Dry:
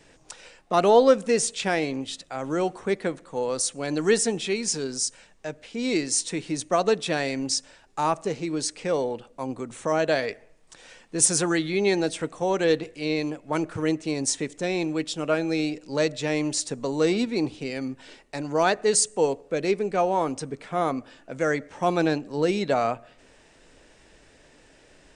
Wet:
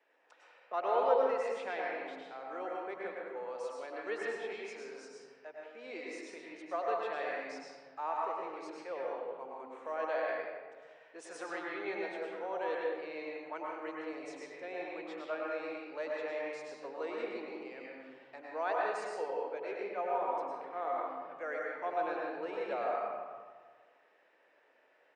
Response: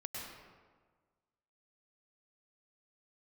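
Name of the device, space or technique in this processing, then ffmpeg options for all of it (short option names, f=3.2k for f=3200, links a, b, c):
supermarket ceiling speaker: -filter_complex "[0:a]highpass=350,lowpass=6.8k[a];[1:a]atrim=start_sample=2205[b];[a][b]afir=irnorm=-1:irlink=0,acrossover=split=440 2600:gain=0.251 1 0.1[c][d][e];[c][d][e]amix=inputs=3:normalize=0,acrossover=split=170[f][g];[f]adelay=360[h];[h][g]amix=inputs=2:normalize=0,volume=-7.5dB"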